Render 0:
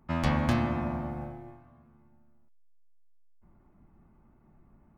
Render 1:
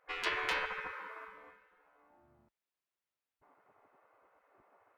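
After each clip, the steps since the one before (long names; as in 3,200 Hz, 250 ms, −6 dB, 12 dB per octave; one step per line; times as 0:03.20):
gate on every frequency bin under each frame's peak −20 dB weak
bass and treble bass −5 dB, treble −11 dB
level +7 dB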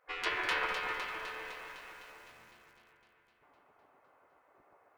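on a send: delay that swaps between a low-pass and a high-pass 127 ms, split 2,200 Hz, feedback 82%, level −4 dB
on the sum: feedback echo at a low word length 199 ms, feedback 80%, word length 9 bits, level −12.5 dB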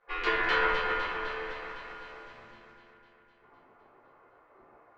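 high-frequency loss of the air 170 metres
rectangular room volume 48 cubic metres, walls mixed, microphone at 1.3 metres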